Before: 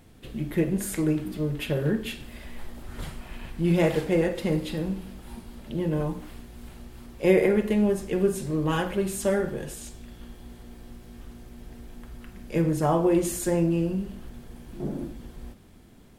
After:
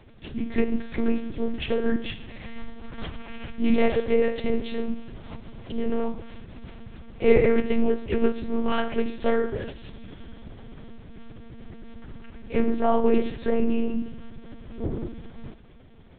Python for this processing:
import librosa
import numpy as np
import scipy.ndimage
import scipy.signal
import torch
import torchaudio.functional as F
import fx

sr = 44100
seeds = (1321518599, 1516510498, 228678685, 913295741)

y = fx.lpc_monotone(x, sr, seeds[0], pitch_hz=230.0, order=8)
y = F.gain(torch.from_numpy(y), 2.5).numpy()